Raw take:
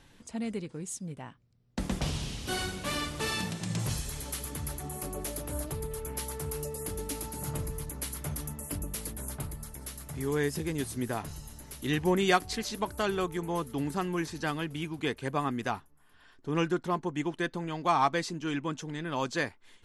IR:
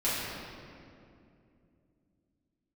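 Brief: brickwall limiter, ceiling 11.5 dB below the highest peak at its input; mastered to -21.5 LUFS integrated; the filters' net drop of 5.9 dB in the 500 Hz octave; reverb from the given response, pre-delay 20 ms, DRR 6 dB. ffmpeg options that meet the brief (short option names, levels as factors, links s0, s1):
-filter_complex "[0:a]equalizer=f=500:t=o:g=-8.5,alimiter=limit=0.0668:level=0:latency=1,asplit=2[s0][s1];[1:a]atrim=start_sample=2205,adelay=20[s2];[s1][s2]afir=irnorm=-1:irlink=0,volume=0.15[s3];[s0][s3]amix=inputs=2:normalize=0,volume=4.73"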